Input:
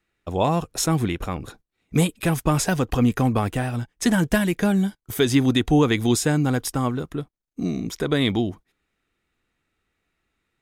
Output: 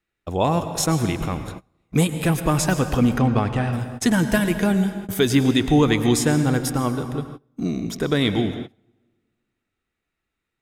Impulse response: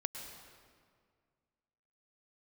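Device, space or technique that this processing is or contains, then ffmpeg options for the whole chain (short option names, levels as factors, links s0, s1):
keyed gated reverb: -filter_complex "[0:a]asplit=3[s0][s1][s2];[1:a]atrim=start_sample=2205[s3];[s1][s3]afir=irnorm=-1:irlink=0[s4];[s2]apad=whole_len=468114[s5];[s4][s5]sidechaingate=range=0.0501:threshold=0.00562:ratio=16:detection=peak,volume=1.5[s6];[s0][s6]amix=inputs=2:normalize=0,asettb=1/sr,asplit=3[s7][s8][s9];[s7]atrim=end=3.184[s10];[s8]atrim=start=3.18:end=3.73,asetpts=PTS-STARTPTS,afade=t=in:d=0.004:c=qsin,afade=t=out:st=0.546:d=0.004:c=qsin,lowpass=5200[s11];[s9]atrim=start=3.726[s12];[s10][s11]acrossfade=d=0.004:c1=hsin:c2=qsin[s13];[s13][s12]acrossfade=d=0.004:c1=qsin:c2=hsin,volume=0.473"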